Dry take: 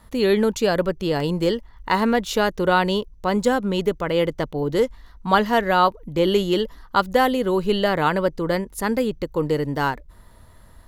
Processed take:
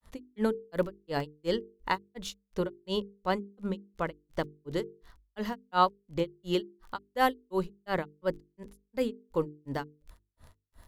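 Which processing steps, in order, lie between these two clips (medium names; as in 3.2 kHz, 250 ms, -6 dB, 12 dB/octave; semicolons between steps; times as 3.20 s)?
crackle 44 per s -36 dBFS; granulator 204 ms, grains 2.8 per s, spray 19 ms, pitch spread up and down by 0 st; hum notches 50/100/150/200/250/300/350/400/450 Hz; trim -5 dB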